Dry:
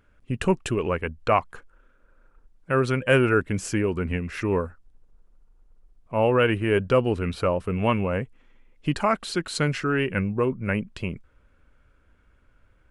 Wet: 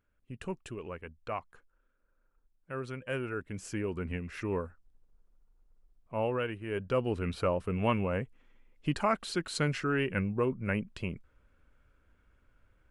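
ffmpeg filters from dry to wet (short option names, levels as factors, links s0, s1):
-af "volume=1.26,afade=t=in:st=3.36:d=0.6:silence=0.446684,afade=t=out:st=6.15:d=0.43:silence=0.398107,afade=t=in:st=6.58:d=0.71:silence=0.281838"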